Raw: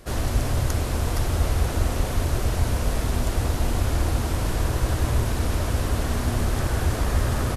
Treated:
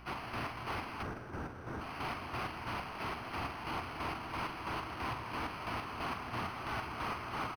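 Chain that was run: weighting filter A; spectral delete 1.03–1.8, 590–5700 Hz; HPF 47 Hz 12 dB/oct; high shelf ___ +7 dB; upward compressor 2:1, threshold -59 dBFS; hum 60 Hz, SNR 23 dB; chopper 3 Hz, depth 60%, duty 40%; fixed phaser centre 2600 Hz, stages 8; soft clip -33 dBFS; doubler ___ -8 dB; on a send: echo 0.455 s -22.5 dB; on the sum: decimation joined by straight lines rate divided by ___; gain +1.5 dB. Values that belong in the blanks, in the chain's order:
8300 Hz, 44 ms, 6×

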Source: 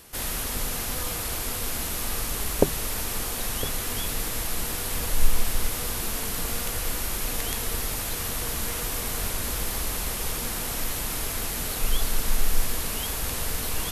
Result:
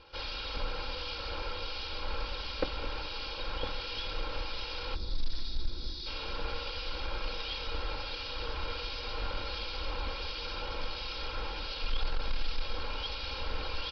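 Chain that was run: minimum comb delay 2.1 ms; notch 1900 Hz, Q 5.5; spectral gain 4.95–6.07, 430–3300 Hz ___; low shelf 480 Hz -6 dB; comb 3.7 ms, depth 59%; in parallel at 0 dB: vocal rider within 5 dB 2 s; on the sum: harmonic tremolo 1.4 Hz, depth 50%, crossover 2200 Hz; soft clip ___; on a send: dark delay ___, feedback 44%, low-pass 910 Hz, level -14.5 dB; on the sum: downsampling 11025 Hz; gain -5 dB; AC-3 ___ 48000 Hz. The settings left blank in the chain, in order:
-16 dB, -16.5 dBFS, 0.211 s, 64 kbps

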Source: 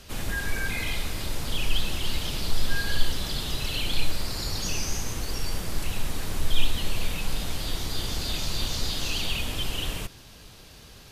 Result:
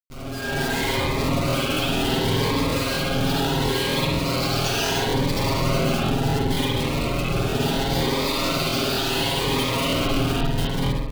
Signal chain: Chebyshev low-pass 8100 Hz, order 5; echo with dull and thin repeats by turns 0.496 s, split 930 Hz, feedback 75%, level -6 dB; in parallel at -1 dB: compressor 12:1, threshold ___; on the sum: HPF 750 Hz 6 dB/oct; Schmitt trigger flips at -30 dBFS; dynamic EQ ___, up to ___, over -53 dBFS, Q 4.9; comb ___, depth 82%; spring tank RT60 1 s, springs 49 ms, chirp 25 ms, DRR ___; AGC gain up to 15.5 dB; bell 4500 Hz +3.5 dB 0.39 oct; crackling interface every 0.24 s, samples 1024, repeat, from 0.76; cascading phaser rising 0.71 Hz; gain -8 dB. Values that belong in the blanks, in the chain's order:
-28 dBFS, 1700 Hz, -7 dB, 7.4 ms, -5.5 dB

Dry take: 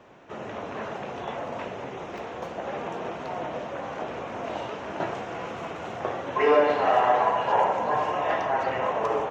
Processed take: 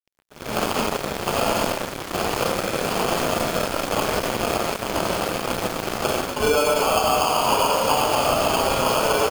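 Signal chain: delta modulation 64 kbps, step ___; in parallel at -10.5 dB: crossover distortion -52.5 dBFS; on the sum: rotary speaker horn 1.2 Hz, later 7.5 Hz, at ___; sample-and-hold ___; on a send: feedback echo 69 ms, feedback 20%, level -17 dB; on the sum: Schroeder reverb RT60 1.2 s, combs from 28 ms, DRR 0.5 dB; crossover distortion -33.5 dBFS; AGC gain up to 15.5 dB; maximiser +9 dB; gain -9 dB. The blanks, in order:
-35 dBFS, 3.4, 23×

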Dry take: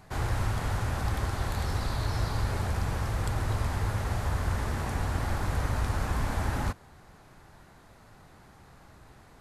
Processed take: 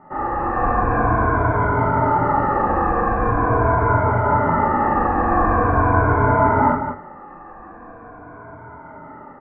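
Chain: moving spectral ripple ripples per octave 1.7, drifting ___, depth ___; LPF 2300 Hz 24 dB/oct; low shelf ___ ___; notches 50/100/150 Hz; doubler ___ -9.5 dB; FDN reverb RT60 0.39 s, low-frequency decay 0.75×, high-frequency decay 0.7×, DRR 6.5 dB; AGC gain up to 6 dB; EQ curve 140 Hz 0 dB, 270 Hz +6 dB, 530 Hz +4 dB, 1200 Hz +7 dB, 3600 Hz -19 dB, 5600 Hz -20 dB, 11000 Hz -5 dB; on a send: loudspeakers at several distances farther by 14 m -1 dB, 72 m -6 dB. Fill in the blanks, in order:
-0.43 Hz, 18 dB, 110 Hz, -8.5 dB, 24 ms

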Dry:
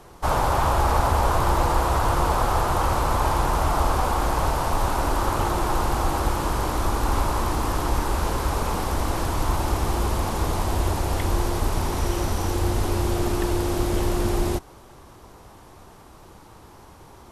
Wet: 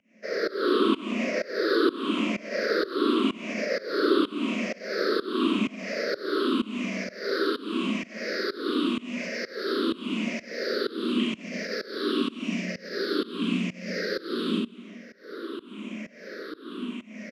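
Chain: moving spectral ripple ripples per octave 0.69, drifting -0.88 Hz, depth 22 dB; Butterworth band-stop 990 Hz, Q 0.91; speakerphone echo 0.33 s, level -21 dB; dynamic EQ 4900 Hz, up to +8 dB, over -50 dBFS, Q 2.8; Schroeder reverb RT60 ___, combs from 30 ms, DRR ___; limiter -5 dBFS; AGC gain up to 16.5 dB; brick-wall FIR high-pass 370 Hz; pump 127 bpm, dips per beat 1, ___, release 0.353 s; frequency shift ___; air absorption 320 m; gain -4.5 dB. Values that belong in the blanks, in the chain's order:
0.68 s, -2.5 dB, -22 dB, -170 Hz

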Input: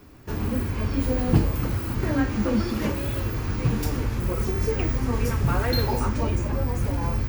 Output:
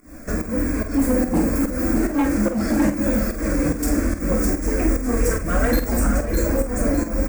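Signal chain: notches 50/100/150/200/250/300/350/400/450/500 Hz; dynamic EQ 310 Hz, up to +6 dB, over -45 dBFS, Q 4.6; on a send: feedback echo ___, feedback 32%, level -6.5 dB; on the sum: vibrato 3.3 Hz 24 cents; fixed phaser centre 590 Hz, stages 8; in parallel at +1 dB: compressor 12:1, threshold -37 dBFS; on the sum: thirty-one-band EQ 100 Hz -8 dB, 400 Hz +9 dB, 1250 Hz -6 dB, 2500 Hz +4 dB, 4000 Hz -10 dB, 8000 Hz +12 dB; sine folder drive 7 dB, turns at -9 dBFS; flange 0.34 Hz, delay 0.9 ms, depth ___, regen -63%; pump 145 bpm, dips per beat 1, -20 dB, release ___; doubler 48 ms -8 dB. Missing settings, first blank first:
0.607 s, 3.1 ms, 0.21 s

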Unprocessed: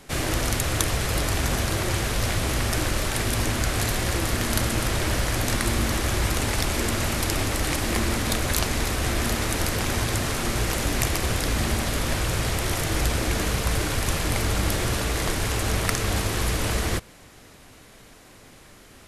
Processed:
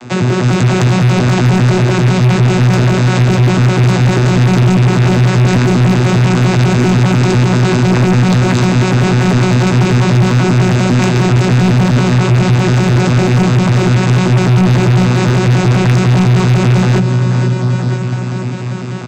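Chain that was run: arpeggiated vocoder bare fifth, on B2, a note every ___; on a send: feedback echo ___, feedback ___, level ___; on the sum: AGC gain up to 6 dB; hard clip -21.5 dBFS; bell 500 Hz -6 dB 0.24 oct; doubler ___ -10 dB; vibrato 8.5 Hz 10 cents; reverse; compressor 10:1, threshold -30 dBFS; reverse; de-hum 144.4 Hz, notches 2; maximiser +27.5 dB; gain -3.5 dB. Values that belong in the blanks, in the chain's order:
99 ms, 0.484 s, 54%, -16 dB, 17 ms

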